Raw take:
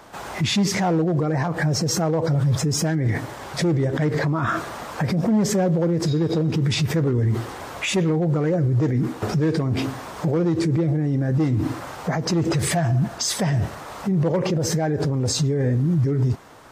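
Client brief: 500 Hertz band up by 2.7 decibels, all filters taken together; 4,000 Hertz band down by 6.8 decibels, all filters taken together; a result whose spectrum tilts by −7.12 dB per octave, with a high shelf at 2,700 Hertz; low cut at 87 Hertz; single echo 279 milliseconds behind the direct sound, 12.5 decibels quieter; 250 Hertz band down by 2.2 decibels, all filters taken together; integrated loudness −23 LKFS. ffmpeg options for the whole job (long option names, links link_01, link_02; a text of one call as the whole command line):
ffmpeg -i in.wav -af "highpass=87,equalizer=frequency=250:width_type=o:gain=-5,equalizer=frequency=500:width_type=o:gain=5,highshelf=frequency=2700:gain=-6.5,equalizer=frequency=4000:width_type=o:gain=-3,aecho=1:1:279:0.237" out.wav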